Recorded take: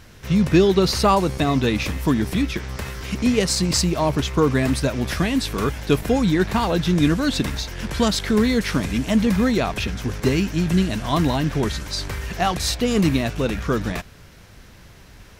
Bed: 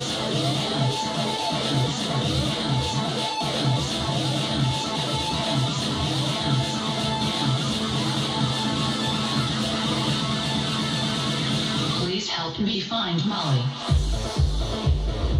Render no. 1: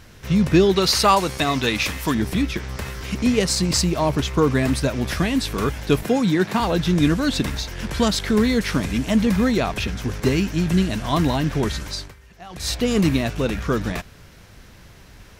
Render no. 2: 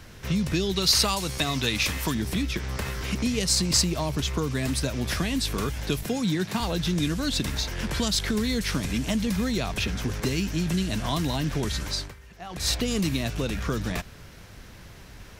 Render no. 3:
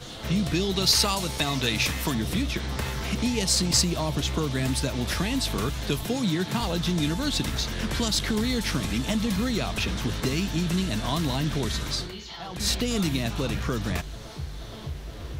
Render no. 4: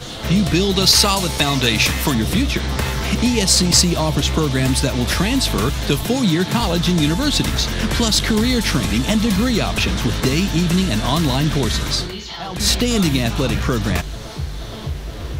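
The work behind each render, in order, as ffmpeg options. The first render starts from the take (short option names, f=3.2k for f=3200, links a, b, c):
-filter_complex "[0:a]asettb=1/sr,asplit=3[a][b][c];[a]atrim=end=0.764[d];[b]atrim=start=0.76:end=2.15,asetpts=PTS-STARTPTS,afade=t=in:d=0.004:c=qsin,afade=t=out:st=1.386:d=0.004:c=qsin,tiltshelf=f=670:g=-5.5[e];[c]atrim=start=2.146[f];[d][e]acrossfade=d=0.004:c1=hsin:c2=qsin[g];[g][f]acrossfade=d=0.004:c1=qsin:c2=hsin,asettb=1/sr,asplit=3[h][i][j];[h]atrim=end=6.054[k];[i]atrim=start=6.05:end=6.6,asetpts=PTS-STARTPTS,afade=t=in:d=0.004:c=qsin,afade=t=out:st=0.546:d=0.004:c=qsin,highpass=f=130:w=0.5412,highpass=f=130:w=1.3066[l];[j]atrim=start=6.596[m];[k][l]acrossfade=d=0.004:c1=hsin:c2=qsin[n];[n][m]acrossfade=d=0.004:c1=qsin:c2=hsin,asplit=3[o][p][q];[o]atrim=end=12.14,asetpts=PTS-STARTPTS,afade=t=out:st=11.88:d=0.26:silence=0.105925[r];[p]atrim=start=12.14:end=12.49,asetpts=PTS-STARTPTS,volume=-19.5dB[s];[q]atrim=start=12.49,asetpts=PTS-STARTPTS,afade=t=in:d=0.26:silence=0.105925[t];[r][s][t]concat=n=3:v=0:a=1"
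-filter_complex "[0:a]acrossover=split=160|3000[a][b][c];[a]alimiter=level_in=2dB:limit=-24dB:level=0:latency=1,volume=-2dB[d];[b]acompressor=threshold=-28dB:ratio=5[e];[d][e][c]amix=inputs=3:normalize=0"
-filter_complex "[1:a]volume=-13.5dB[a];[0:a][a]amix=inputs=2:normalize=0"
-af "volume=9dB,alimiter=limit=-1dB:level=0:latency=1"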